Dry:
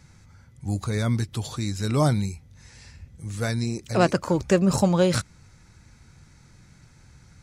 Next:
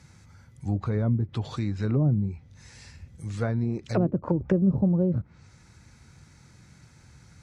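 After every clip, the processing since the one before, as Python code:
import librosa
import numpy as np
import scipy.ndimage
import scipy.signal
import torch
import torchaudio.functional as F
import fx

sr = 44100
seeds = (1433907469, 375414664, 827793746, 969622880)

y = fx.env_lowpass_down(x, sr, base_hz=310.0, full_db=-18.5)
y = scipy.signal.sosfilt(scipy.signal.butter(2, 56.0, 'highpass', fs=sr, output='sos'), y)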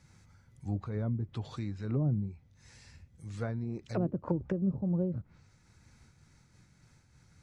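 y = fx.dmg_noise_colour(x, sr, seeds[0], colour='brown', level_db=-65.0)
y = fx.am_noise(y, sr, seeds[1], hz=5.7, depth_pct=60)
y = y * 10.0 ** (-5.5 / 20.0)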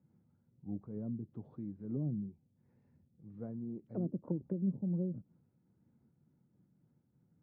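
y = fx.ladder_bandpass(x, sr, hz=260.0, resonance_pct=25)
y = y * 10.0 ** (6.5 / 20.0)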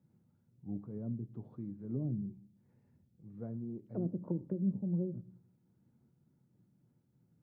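y = fx.rev_fdn(x, sr, rt60_s=0.54, lf_ratio=1.45, hf_ratio=0.85, size_ms=49.0, drr_db=13.0)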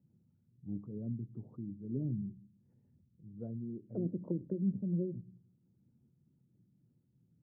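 y = fx.envelope_sharpen(x, sr, power=1.5)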